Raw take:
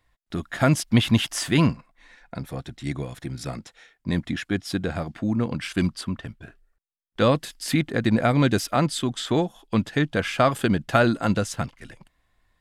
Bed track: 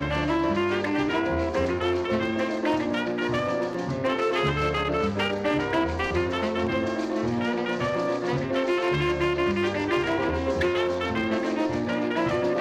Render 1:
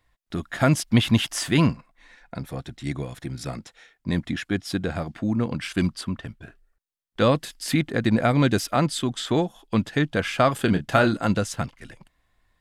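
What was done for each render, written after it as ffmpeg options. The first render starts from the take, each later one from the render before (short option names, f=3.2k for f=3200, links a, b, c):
-filter_complex "[0:a]asettb=1/sr,asplit=3[a][b][c];[a]atrim=end=10.654[d];[b]atrim=start=10.65:end=11.17,asetpts=PTS-STARTPTS,afade=t=in:d=0.004:c=qsin,afade=t=out:st=0.516:d=0.004:c=qsin,asplit=2[e][f];[f]adelay=28,volume=-9dB[g];[e][g]amix=inputs=2:normalize=0,atrim=end_sample=22932[h];[c]atrim=start=11.166[i];[d][h]acrossfade=d=0.004:c1=hsin:c2=qsin[j];[j][i]acrossfade=d=0.004:c1=qsin:c2=hsin"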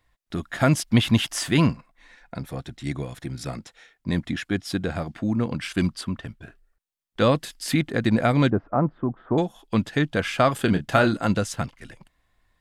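-filter_complex "[0:a]asettb=1/sr,asplit=3[a][b][c];[a]atrim=end=8.504[d];[b]atrim=start=8.5:end=9.38,asetpts=PTS-STARTPTS,afade=t=in:d=0.004:c=qsin,afade=t=out:st=0.876:d=0.004:c=qsin,lowpass=f=1.2k:w=0.5412,lowpass=f=1.2k:w=1.3066[e];[c]atrim=start=9.376[f];[d][e]acrossfade=d=0.004:c1=hsin:c2=qsin[g];[g][f]acrossfade=d=0.004:c1=qsin:c2=hsin"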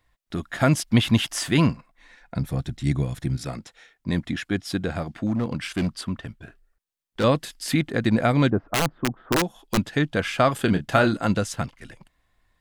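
-filter_complex "[0:a]asettb=1/sr,asplit=3[a][b][c];[a]atrim=end=2.364[d];[b]atrim=start=2.36:end=3.37,asetpts=PTS-STARTPTS,afade=t=in:d=0.004:c=qsin,afade=t=out:st=1.006:d=0.004:c=qsin,bass=f=250:g=9,treble=f=4k:g=3[e];[c]atrim=start=3.366[f];[d][e]acrossfade=d=0.004:c1=hsin:c2=qsin[g];[g][f]acrossfade=d=0.004:c1=qsin:c2=hsin,asettb=1/sr,asplit=3[h][i][j];[h]atrim=end=5.264[k];[i]atrim=start=5.26:end=7.24,asetpts=PTS-STARTPTS,afade=t=in:d=0.004:c=qsin,afade=t=out:st=1.976:d=0.004:c=qsin,asoftclip=type=hard:threshold=-19.5dB[l];[j]atrim=start=7.236[m];[k][l]acrossfade=d=0.004:c1=hsin:c2=qsin[n];[n][m]acrossfade=d=0.004:c1=qsin:c2=hsin,asettb=1/sr,asplit=3[o][p][q];[o]atrim=end=8.684[r];[p]atrim=start=8.68:end=9.78,asetpts=PTS-STARTPTS,afade=t=in:d=0.004:c=qsin,afade=t=out:st=1.096:d=0.004:c=qsin,aeval=exprs='(mod(5.31*val(0)+1,2)-1)/5.31':c=same[s];[q]atrim=start=9.776[t];[r][s]acrossfade=d=0.004:c1=hsin:c2=qsin[u];[u][t]acrossfade=d=0.004:c1=qsin:c2=hsin"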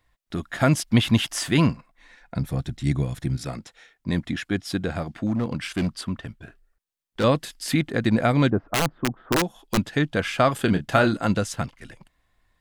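-af anull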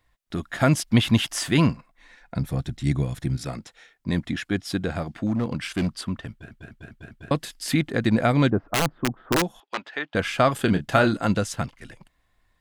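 -filter_complex "[0:a]asettb=1/sr,asplit=3[a][b][c];[a]atrim=end=9.604[d];[b]atrim=start=9.6:end=10.15,asetpts=PTS-STARTPTS,afade=t=in:d=0.004:c=qsin,afade=t=out:st=0.546:d=0.004:c=qsin,highpass=680,lowpass=3k[e];[c]atrim=start=10.146[f];[d][e]acrossfade=d=0.004:c1=hsin:c2=qsin[g];[g][f]acrossfade=d=0.004:c1=qsin:c2=hsin,asplit=6[h][i][j][k][l][m];[h]atrim=end=6.512[n];[i]atrim=start=6.308:end=6.512[o];[j]atrim=start=6.308:end=6.512[p];[k]atrim=start=6.308:end=6.512[q];[l]atrim=start=6.308:end=6.512[r];[m]atrim=start=7.308[s];[n][o]acrossfade=d=0.004:c1=hsin:c2=hsin[t];[t][p]acrossfade=d=0.004:c1=hsin:c2=hsin[u];[u][q]acrossfade=d=0.004:c1=hsin:c2=hsin[v];[v][r]acrossfade=d=0.004:c1=hsin:c2=hsin[w];[w][s]acrossfade=d=0.004:c1=hsin:c2=hsin"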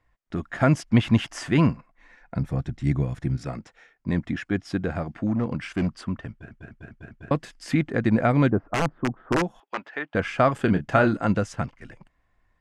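-af "lowpass=5k,equalizer=f=3.8k:w=1.7:g=-10.5"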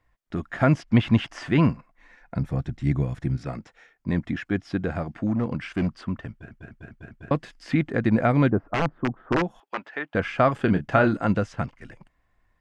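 -filter_complex "[0:a]acrossover=split=4900[a][b];[b]acompressor=threshold=-59dB:ratio=4:attack=1:release=60[c];[a][c]amix=inputs=2:normalize=0"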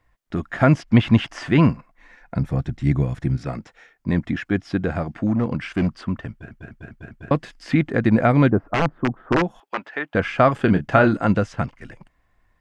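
-af "volume=4dB"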